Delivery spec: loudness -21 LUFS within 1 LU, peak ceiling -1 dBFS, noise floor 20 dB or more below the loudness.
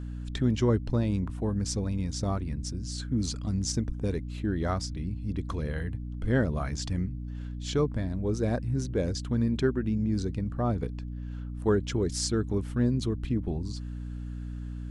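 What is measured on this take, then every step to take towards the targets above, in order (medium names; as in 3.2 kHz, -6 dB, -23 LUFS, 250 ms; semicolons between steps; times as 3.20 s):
hum 60 Hz; highest harmonic 300 Hz; hum level -34 dBFS; loudness -30.5 LUFS; peak level -12.5 dBFS; loudness target -21.0 LUFS
-> de-hum 60 Hz, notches 5; trim +9.5 dB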